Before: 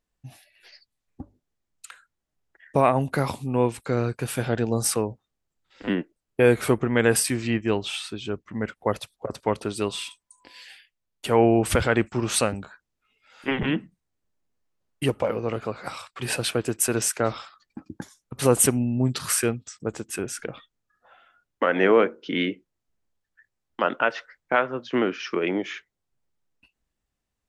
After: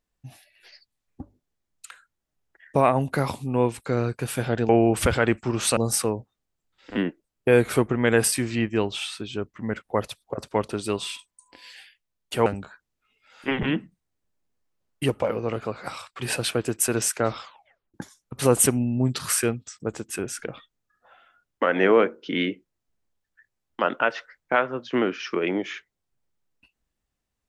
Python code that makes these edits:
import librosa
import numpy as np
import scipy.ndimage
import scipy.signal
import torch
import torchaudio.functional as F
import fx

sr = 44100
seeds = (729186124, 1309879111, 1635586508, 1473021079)

y = fx.edit(x, sr, fx.move(start_s=11.38, length_s=1.08, to_s=4.69),
    fx.tape_stop(start_s=17.41, length_s=0.53), tone=tone)